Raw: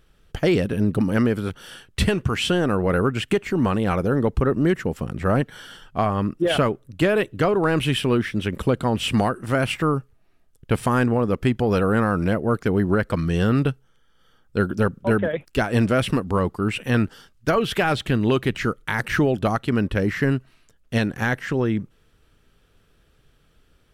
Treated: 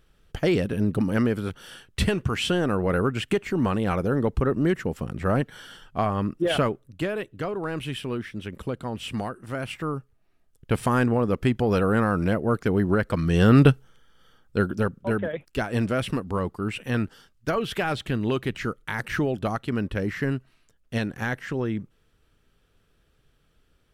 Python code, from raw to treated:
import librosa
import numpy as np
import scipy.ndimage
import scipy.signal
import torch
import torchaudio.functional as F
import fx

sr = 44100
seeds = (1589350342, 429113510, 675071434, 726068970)

y = fx.gain(x, sr, db=fx.line((6.65, -3.0), (7.17, -10.0), (9.61, -10.0), (10.83, -2.0), (13.18, -2.0), (13.71, 7.0), (14.98, -5.5)))